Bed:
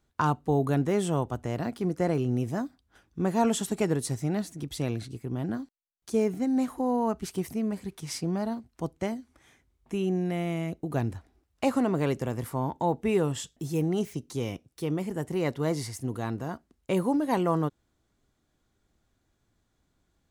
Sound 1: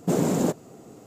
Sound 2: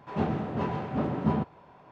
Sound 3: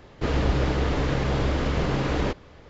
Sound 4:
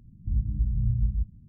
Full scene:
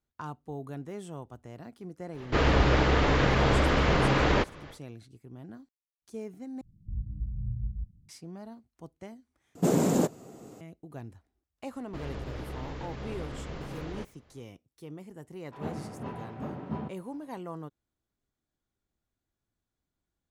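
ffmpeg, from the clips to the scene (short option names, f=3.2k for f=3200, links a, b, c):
-filter_complex "[3:a]asplit=2[a][b];[0:a]volume=-14dB[c];[a]equalizer=f=1.6k:w=0.39:g=6[d];[4:a]bandreject=f=240:w=5.7[e];[b]alimiter=limit=-15dB:level=0:latency=1:release=71[f];[c]asplit=3[g][h][i];[g]atrim=end=6.614[j];[e]atrim=end=1.48,asetpts=PTS-STARTPTS,volume=-8.5dB[k];[h]atrim=start=8.086:end=9.554[l];[1:a]atrim=end=1.06,asetpts=PTS-STARTPTS,volume=-1.5dB[m];[i]atrim=start=10.606[n];[d]atrim=end=2.69,asetpts=PTS-STARTPTS,volume=-1dB,afade=t=in:d=0.1,afade=t=out:st=2.59:d=0.1,adelay=2110[o];[f]atrim=end=2.69,asetpts=PTS-STARTPTS,volume=-14.5dB,afade=t=in:d=0.004:c=hsin,afade=t=out:st=2.686:d=0.004:c=hsin,adelay=11720[p];[2:a]atrim=end=1.91,asetpts=PTS-STARTPTS,volume=-9dB,afade=t=in:d=0.004:c=hsin,afade=t=out:st=1.906:d=0.004:c=hsin,adelay=15450[q];[j][k]acrossfade=d=0.004:c1=hsin:c2=hsin[r];[r][l]acrossfade=d=0.004:c1=hsin:c2=hsin[s];[s][m]acrossfade=d=0.004:c1=hsin:c2=hsin[t];[t][n]acrossfade=d=0.004:c1=hsin:c2=hsin[u];[u][o][p][q]amix=inputs=4:normalize=0"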